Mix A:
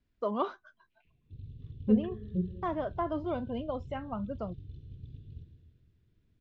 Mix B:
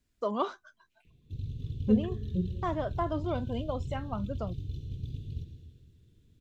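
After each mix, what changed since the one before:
background +8.5 dB; master: remove air absorption 210 m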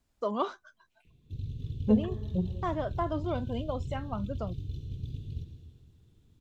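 second voice: remove Chebyshev band-stop 420–1600 Hz, order 2

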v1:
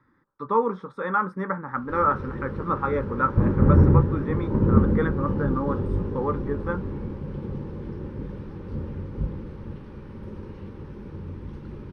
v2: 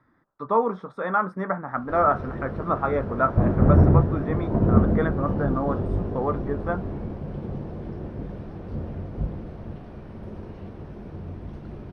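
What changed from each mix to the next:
master: remove Butterworth band-stop 680 Hz, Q 2.9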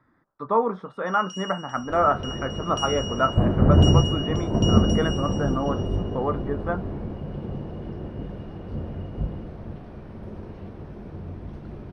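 first sound: unmuted; reverb: on, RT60 0.35 s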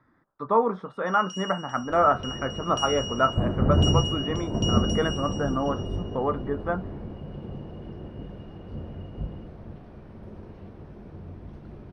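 second sound -5.0 dB

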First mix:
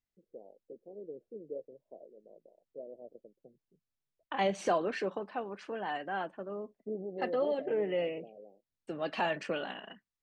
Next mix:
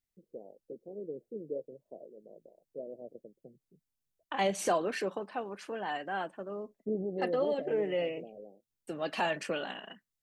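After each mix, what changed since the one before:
first voice: add tilt -3 dB/oct; master: remove air absorption 110 m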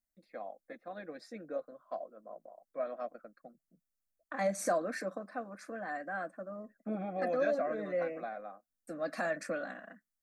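first voice: remove steep low-pass 550 Hz 48 dB/oct; master: add fixed phaser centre 600 Hz, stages 8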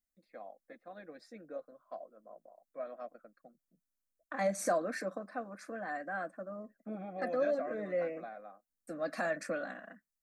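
first voice -5.0 dB

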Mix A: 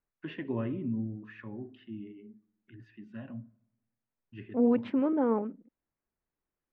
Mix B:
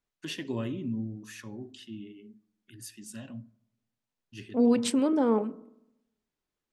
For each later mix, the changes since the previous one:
second voice: send on; master: remove LPF 2200 Hz 24 dB/oct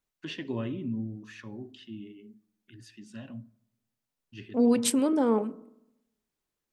first voice: add LPF 3800 Hz 12 dB/oct; second voice: remove air absorption 63 m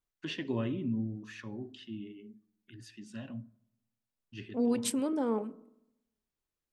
second voice -6.5 dB

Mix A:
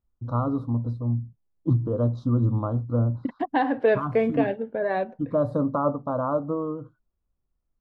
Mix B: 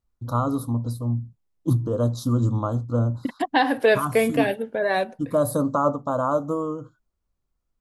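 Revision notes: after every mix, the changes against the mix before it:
master: remove tape spacing loss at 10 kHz 40 dB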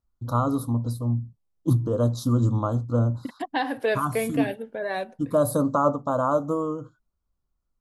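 second voice -6.5 dB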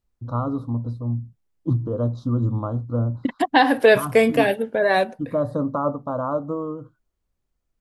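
first voice: add tape spacing loss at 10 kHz 30 dB; second voice +10.5 dB

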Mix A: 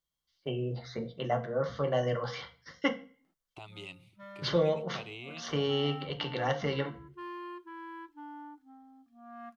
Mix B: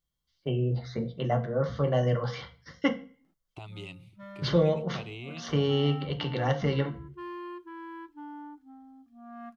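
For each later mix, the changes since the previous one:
master: add low shelf 260 Hz +10.5 dB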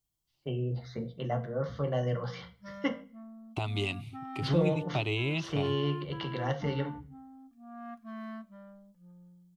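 first voice -5.0 dB; second voice +10.5 dB; background: entry -1.55 s

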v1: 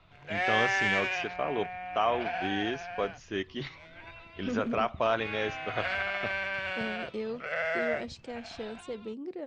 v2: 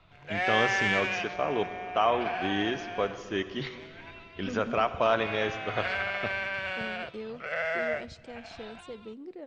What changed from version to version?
second voice -4.5 dB; reverb: on, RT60 2.6 s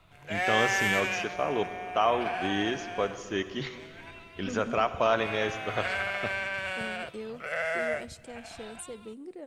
master: remove LPF 5500 Hz 24 dB/oct

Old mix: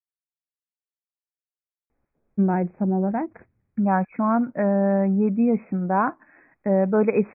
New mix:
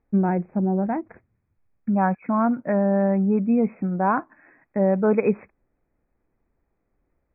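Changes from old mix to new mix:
first voice: entry -2.25 s; second voice: entry -1.90 s

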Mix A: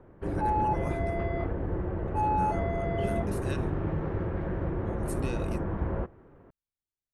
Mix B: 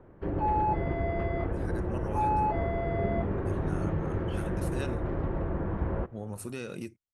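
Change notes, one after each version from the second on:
speech: entry +1.30 s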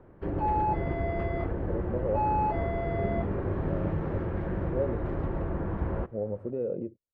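speech: add synth low-pass 530 Hz, resonance Q 4.5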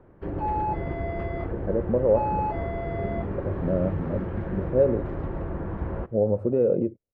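speech +10.0 dB

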